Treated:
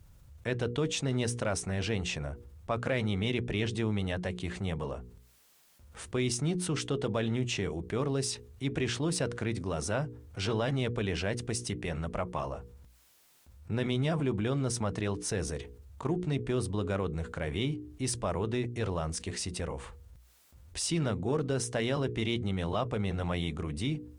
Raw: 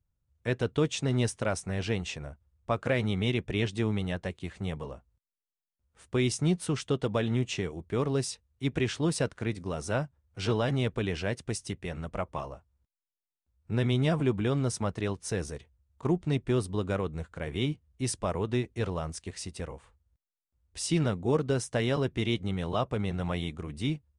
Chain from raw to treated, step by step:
harmonic generator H 6 −36 dB, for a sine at −14.5 dBFS
mains-hum notches 60/120/180/240/300/360/420/480 Hz
envelope flattener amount 50%
level −4.5 dB

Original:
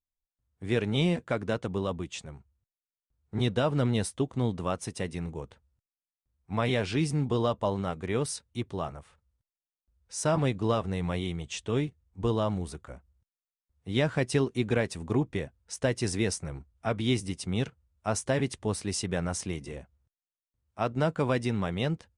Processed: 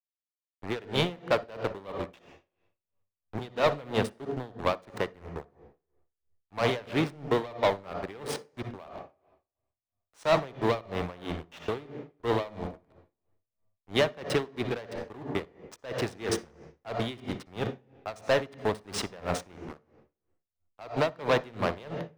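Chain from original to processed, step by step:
slack as between gear wheels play −29.5 dBFS
three-way crossover with the lows and the highs turned down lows −14 dB, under 450 Hz, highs −13 dB, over 2,200 Hz
leveller curve on the samples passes 3
on a send at −9 dB: convolution reverb RT60 0.85 s, pre-delay 57 ms
on the sum: dynamic equaliser 3,700 Hz, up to +7 dB, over −52 dBFS, Q 1.8
tremolo with a sine in dB 3 Hz, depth 22 dB
level +2 dB

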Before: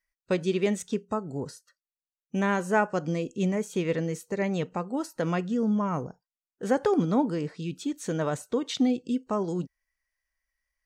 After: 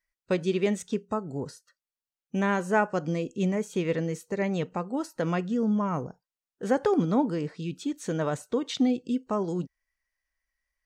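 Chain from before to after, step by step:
high-shelf EQ 7,900 Hz −4.5 dB

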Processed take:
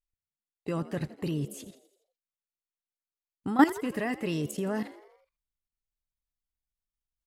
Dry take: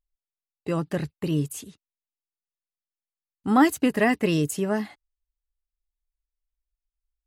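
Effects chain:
output level in coarse steps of 15 dB
echo with shifted repeats 83 ms, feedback 57%, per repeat +65 Hz, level −17 dB

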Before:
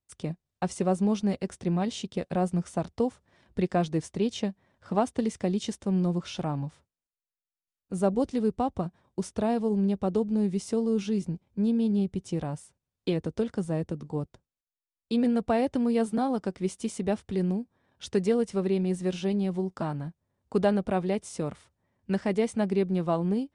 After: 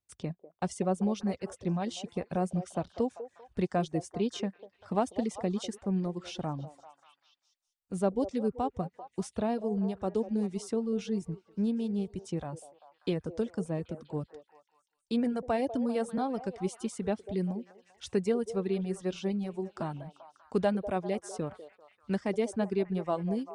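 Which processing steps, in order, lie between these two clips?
reverb reduction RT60 1.1 s
echo through a band-pass that steps 196 ms, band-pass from 540 Hz, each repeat 0.7 octaves, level −10 dB
level −3 dB

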